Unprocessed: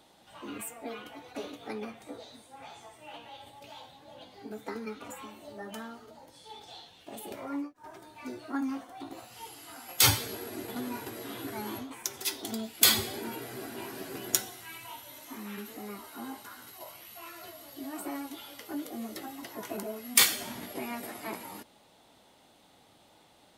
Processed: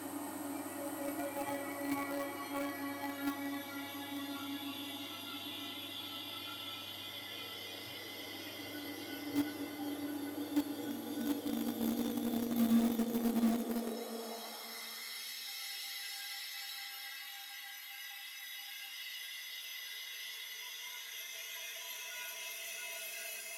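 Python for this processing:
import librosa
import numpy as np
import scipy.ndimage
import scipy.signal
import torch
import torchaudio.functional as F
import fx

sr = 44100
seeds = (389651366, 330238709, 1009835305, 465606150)

p1 = x + fx.echo_single(x, sr, ms=1105, db=-7.5, dry=0)
p2 = fx.paulstretch(p1, sr, seeds[0], factor=13.0, window_s=0.5, from_s=17.96)
p3 = fx.noise_reduce_blind(p2, sr, reduce_db=10)
p4 = fx.dmg_buzz(p3, sr, base_hz=100.0, harmonics=39, level_db=-68.0, tilt_db=-4, odd_only=False)
p5 = fx.filter_sweep_highpass(p4, sr, from_hz=100.0, to_hz=2200.0, start_s=12.69, end_s=15.37, q=1.3)
p6 = fx.quant_dither(p5, sr, seeds[1], bits=6, dither='none')
p7 = p5 + F.gain(torch.from_numpy(p6), -11.0).numpy()
y = F.gain(torch.from_numpy(p7), 5.0).numpy()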